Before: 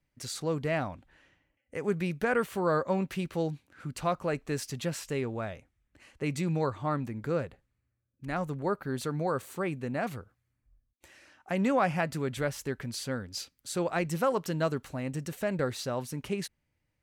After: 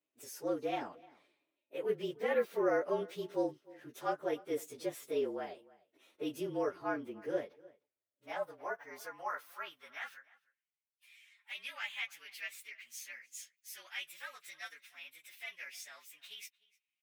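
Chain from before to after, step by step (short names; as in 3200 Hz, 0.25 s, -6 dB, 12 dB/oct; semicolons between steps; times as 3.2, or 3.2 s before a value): inharmonic rescaling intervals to 111%; high-pass sweep 380 Hz -> 2300 Hz, 7.53–10.82; outdoor echo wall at 52 m, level -22 dB; gain -5.5 dB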